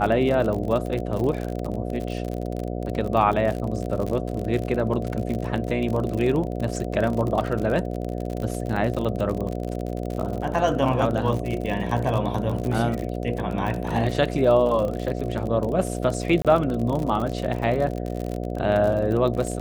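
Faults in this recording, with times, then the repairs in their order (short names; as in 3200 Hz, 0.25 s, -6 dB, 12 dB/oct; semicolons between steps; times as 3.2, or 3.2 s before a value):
buzz 60 Hz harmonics 12 -29 dBFS
crackle 46/s -27 dBFS
16.42–16.45 gap 27 ms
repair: de-click; de-hum 60 Hz, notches 12; interpolate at 16.42, 27 ms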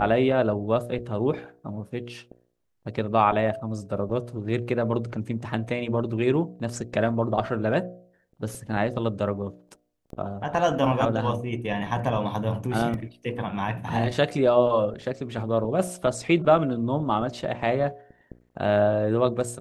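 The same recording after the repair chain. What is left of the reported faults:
none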